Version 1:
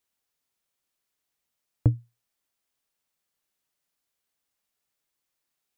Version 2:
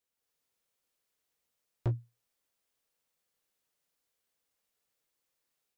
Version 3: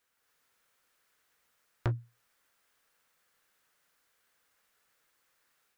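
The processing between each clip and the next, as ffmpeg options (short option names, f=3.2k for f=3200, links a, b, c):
-af "equalizer=f=490:t=o:w=0.32:g=7,dynaudnorm=f=150:g=3:m=6dB,asoftclip=type=hard:threshold=-19dB,volume=-7dB"
-af "equalizer=f=1.5k:t=o:w=1.2:g=10.5,acompressor=threshold=-41dB:ratio=2,volume=7dB"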